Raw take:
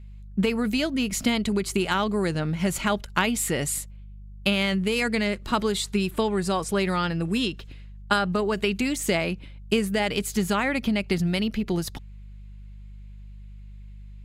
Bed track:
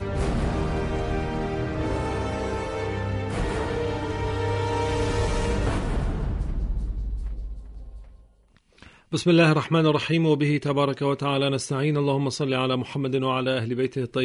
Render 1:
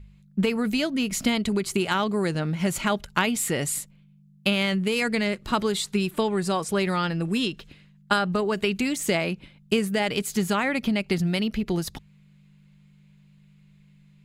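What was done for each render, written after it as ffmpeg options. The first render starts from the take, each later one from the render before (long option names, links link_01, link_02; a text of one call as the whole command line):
ffmpeg -i in.wav -af "bandreject=frequency=50:width_type=h:width=4,bandreject=frequency=100:width_type=h:width=4" out.wav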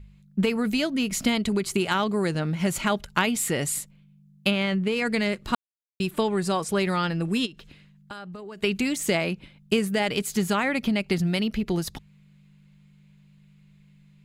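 ffmpeg -i in.wav -filter_complex "[0:a]asplit=3[link_01][link_02][link_03];[link_01]afade=type=out:start_time=4.5:duration=0.02[link_04];[link_02]lowpass=frequency=2700:poles=1,afade=type=in:start_time=4.5:duration=0.02,afade=type=out:start_time=5.05:duration=0.02[link_05];[link_03]afade=type=in:start_time=5.05:duration=0.02[link_06];[link_04][link_05][link_06]amix=inputs=3:normalize=0,asplit=3[link_07][link_08][link_09];[link_07]afade=type=out:start_time=7.45:duration=0.02[link_10];[link_08]acompressor=threshold=-41dB:ratio=3:attack=3.2:release=140:knee=1:detection=peak,afade=type=in:start_time=7.45:duration=0.02,afade=type=out:start_time=8.62:duration=0.02[link_11];[link_09]afade=type=in:start_time=8.62:duration=0.02[link_12];[link_10][link_11][link_12]amix=inputs=3:normalize=0,asplit=3[link_13][link_14][link_15];[link_13]atrim=end=5.55,asetpts=PTS-STARTPTS,afade=type=out:start_time=5.546:duration=0.004:curve=hsin[link_16];[link_14]atrim=start=5.55:end=6,asetpts=PTS-STARTPTS,volume=0[link_17];[link_15]atrim=start=6,asetpts=PTS-STARTPTS,afade=type=in:duration=0.004:curve=hsin[link_18];[link_16][link_17][link_18]concat=n=3:v=0:a=1" out.wav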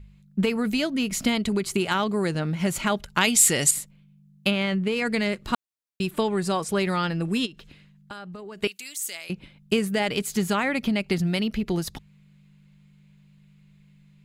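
ffmpeg -i in.wav -filter_complex "[0:a]asettb=1/sr,asplit=3[link_01][link_02][link_03];[link_01]atrim=end=3.214[link_04];[link_02]atrim=start=3.21:end=3.71,asetpts=PTS-STARTPTS,afade=type=in:duration=0.004:curve=qsin,afade=type=out:start_time=0.496:duration=0.004:curve=qsin,equalizer=frequency=7100:width=0.42:gain=12[link_05];[link_03]atrim=start=3.706[link_06];[link_04][link_05]acrossfade=duration=0.004:curve1=hsin:curve2=qsin[link_07];[link_07][link_06]acrossfade=duration=0.004:curve1=qsin:curve2=hsin,asettb=1/sr,asplit=3[link_08][link_09][link_10];[link_08]atrim=end=8.674[link_11];[link_09]atrim=start=8.67:end=9.3,asetpts=PTS-STARTPTS,afade=type=in:duration=0.004:curve=qsin,afade=type=out:start_time=0.626:duration=0.004:curve=qsin,aderivative[link_12];[link_10]atrim=start=9.296[link_13];[link_11][link_12]acrossfade=duration=0.004:curve1=hsin:curve2=qsin[link_14];[link_14][link_13]acrossfade=duration=0.004:curve1=qsin:curve2=hsin" out.wav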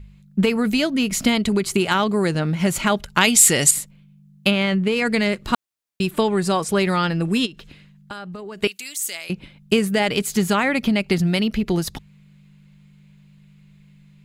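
ffmpeg -i in.wav -af "volume=5dB,alimiter=limit=-1dB:level=0:latency=1" out.wav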